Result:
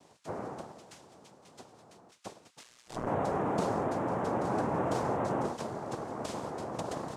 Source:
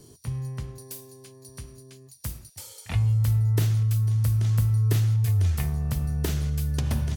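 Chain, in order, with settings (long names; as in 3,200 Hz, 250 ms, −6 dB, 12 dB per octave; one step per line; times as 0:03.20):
cochlear-implant simulation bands 2
0:02.63–0:03.07: amplitude modulation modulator 120 Hz, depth 90%
level −8 dB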